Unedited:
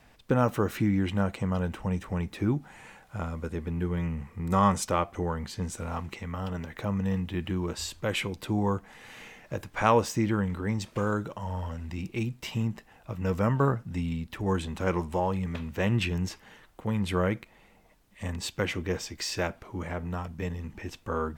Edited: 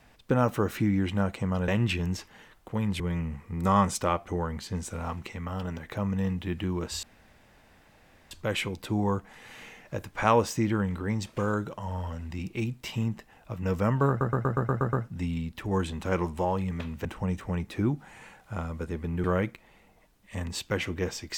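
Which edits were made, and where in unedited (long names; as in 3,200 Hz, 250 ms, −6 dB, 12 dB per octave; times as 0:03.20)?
0:01.68–0:03.87: swap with 0:15.80–0:17.12
0:07.90: splice in room tone 1.28 s
0:13.68: stutter 0.12 s, 8 plays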